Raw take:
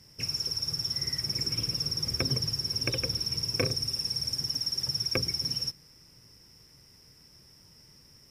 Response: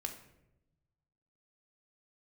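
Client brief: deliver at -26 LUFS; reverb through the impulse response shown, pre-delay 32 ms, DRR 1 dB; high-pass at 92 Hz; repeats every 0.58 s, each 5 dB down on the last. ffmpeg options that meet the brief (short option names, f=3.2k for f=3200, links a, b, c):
-filter_complex "[0:a]highpass=92,aecho=1:1:580|1160|1740|2320|2900|3480|4060:0.562|0.315|0.176|0.0988|0.0553|0.031|0.0173,asplit=2[a][b];[1:a]atrim=start_sample=2205,adelay=32[c];[b][c]afir=irnorm=-1:irlink=0,volume=0dB[d];[a][d]amix=inputs=2:normalize=0,volume=-0.5dB"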